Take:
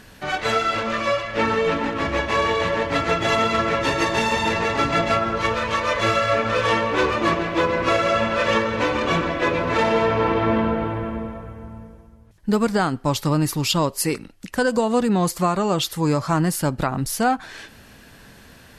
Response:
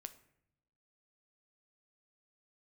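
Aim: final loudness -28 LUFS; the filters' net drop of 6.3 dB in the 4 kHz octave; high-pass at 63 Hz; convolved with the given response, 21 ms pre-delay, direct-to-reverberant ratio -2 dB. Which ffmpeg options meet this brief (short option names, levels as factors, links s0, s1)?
-filter_complex "[0:a]highpass=63,equalizer=f=4000:t=o:g=-8.5,asplit=2[s0][s1];[1:a]atrim=start_sample=2205,adelay=21[s2];[s1][s2]afir=irnorm=-1:irlink=0,volume=2.24[s3];[s0][s3]amix=inputs=2:normalize=0,volume=0.316"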